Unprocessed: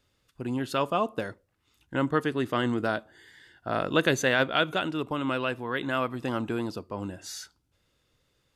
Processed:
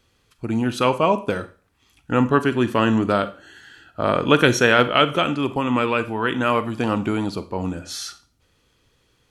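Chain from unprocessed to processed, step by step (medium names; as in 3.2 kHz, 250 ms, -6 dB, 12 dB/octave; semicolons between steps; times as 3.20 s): speed mistake 48 kHz file played as 44.1 kHz; Schroeder reverb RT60 0.37 s, combs from 32 ms, DRR 12.5 dB; trim +8 dB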